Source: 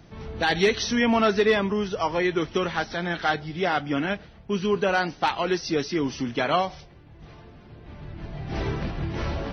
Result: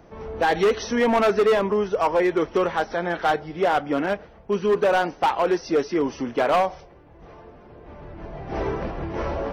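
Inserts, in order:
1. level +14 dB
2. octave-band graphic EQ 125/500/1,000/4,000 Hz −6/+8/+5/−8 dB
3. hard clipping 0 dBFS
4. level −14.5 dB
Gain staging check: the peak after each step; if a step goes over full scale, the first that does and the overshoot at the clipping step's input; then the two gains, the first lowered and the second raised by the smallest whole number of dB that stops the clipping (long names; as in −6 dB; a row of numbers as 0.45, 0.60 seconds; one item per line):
+2.5, +9.5, 0.0, −14.5 dBFS
step 1, 9.5 dB
step 1 +4 dB, step 4 −4.5 dB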